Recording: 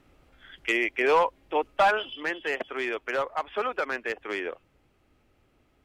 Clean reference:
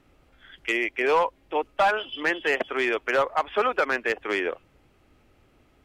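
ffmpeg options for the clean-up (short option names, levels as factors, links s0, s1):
-af "asetnsamples=n=441:p=0,asendcmd='2.13 volume volume 5.5dB',volume=1"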